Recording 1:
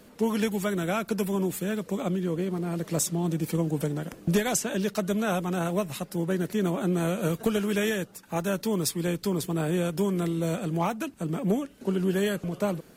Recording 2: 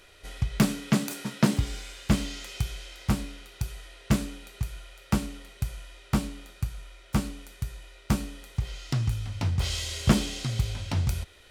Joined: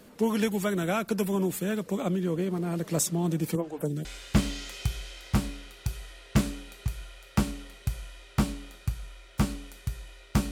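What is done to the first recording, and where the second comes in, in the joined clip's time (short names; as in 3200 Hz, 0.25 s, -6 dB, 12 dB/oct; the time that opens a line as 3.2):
recording 1
3.55–4.05 photocell phaser 2 Hz
4.05 switch to recording 2 from 1.8 s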